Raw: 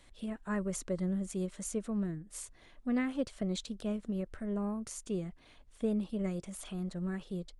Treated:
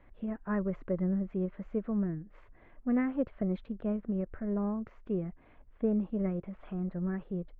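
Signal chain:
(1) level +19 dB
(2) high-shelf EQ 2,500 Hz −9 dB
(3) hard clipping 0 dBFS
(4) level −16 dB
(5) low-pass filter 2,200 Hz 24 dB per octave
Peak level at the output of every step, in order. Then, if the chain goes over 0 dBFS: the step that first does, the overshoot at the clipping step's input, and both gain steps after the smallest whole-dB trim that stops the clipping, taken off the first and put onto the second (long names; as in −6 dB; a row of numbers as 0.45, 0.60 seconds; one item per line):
−2.5, −3.0, −3.0, −19.0, −19.0 dBFS
no step passes full scale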